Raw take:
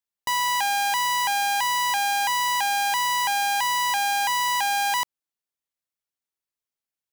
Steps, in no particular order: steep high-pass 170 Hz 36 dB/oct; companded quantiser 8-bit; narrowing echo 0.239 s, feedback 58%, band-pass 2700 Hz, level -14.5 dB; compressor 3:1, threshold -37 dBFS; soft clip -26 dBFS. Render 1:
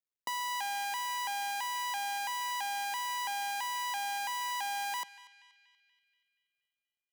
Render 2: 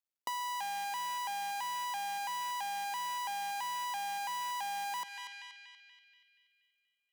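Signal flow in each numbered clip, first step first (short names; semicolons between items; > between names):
compressor > soft clip > steep high-pass > companded quantiser > narrowing echo; companded quantiser > narrowing echo > soft clip > steep high-pass > compressor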